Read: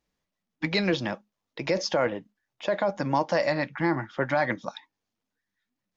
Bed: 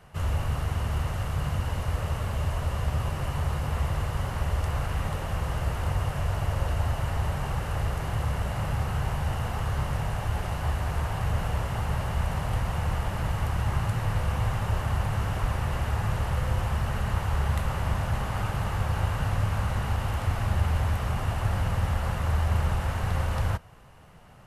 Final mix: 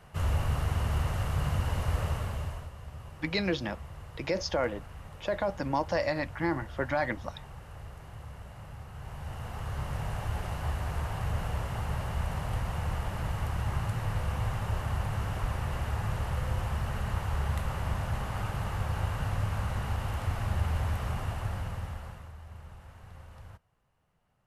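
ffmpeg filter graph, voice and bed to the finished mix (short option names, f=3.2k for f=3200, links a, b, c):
-filter_complex "[0:a]adelay=2600,volume=-4.5dB[a];[1:a]volume=11dB,afade=t=out:st=2.02:d=0.69:silence=0.16788,afade=t=in:st=8.92:d=1.22:silence=0.251189,afade=t=out:st=21.1:d=1.23:silence=0.133352[b];[a][b]amix=inputs=2:normalize=0"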